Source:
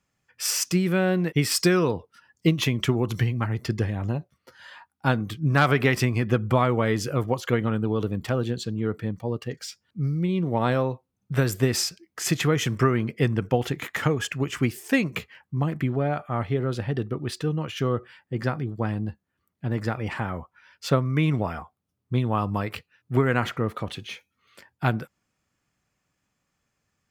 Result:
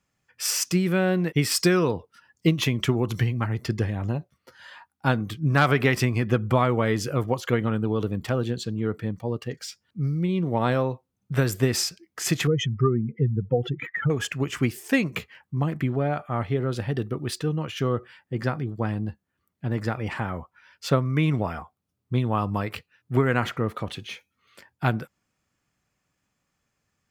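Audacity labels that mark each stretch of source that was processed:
12.470000	14.100000	spectral contrast enhancement exponent 2.4
16.760000	17.400000	treble shelf 6.3 kHz +7 dB

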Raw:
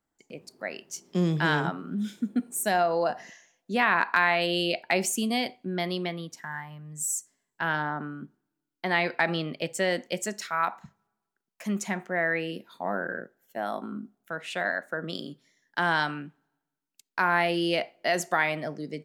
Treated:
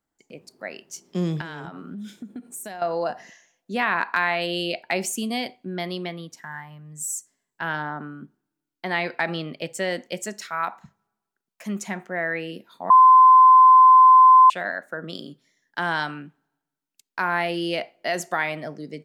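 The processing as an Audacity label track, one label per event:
1.410000	2.820000	compression 8:1, threshold -32 dBFS
12.900000	14.500000	bleep 1.03 kHz -8 dBFS

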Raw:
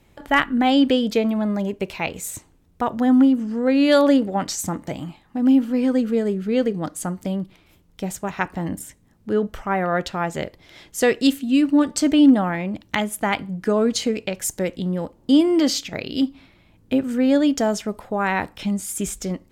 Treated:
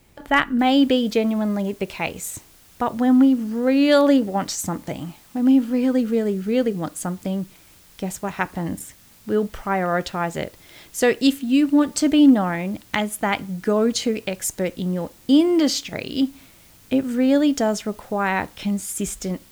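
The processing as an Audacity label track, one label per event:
0.590000	0.590000	noise floor step -64 dB -52 dB

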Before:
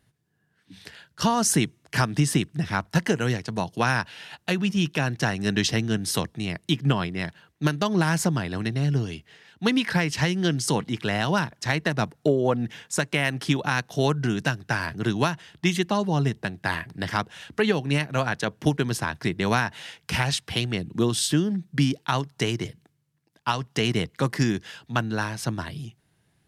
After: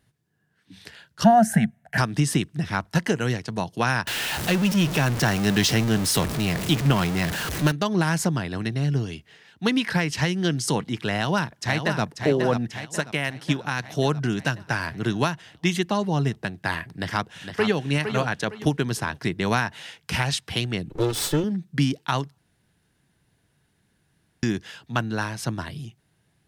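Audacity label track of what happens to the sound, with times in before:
1.240000	1.980000	FFT filter 130 Hz 0 dB, 220 Hz +9 dB, 320 Hz -24 dB, 730 Hz +15 dB, 1.1 kHz -15 dB, 1.6 kHz +9 dB, 2.5 kHz -6 dB, 4.8 kHz -17 dB, 8.7 kHz -8 dB, 14 kHz -3 dB
4.070000	7.720000	jump at every zero crossing of -23 dBFS
11.130000	12.030000	echo throw 540 ms, feedback 60%, level -6.5 dB
12.850000	13.800000	upward expansion, over -33 dBFS
16.890000	17.810000	echo throw 460 ms, feedback 30%, level -7.5 dB
20.890000	21.440000	comb filter that takes the minimum delay 2.3 ms
22.380000	24.430000	room tone

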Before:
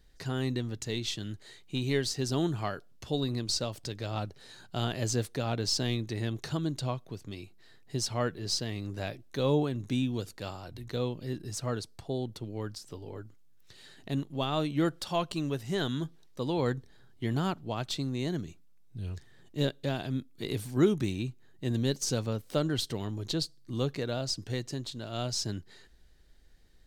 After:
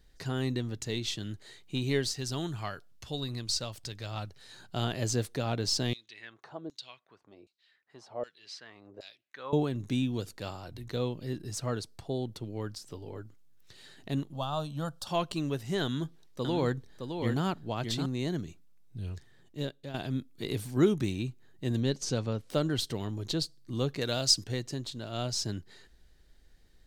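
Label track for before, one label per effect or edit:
2.110000	4.520000	peaking EQ 340 Hz -7.5 dB 2.6 oct
5.930000	9.530000	LFO band-pass saw down 1.3 Hz 450–5500 Hz
14.330000	15.070000	static phaser centre 870 Hz, stages 4
15.830000	18.060000	delay 614 ms -6 dB
18.990000	19.940000	fade out, to -11.5 dB
21.800000	22.500000	distance through air 57 m
24.010000	24.440000	treble shelf 2.2 kHz +11.5 dB

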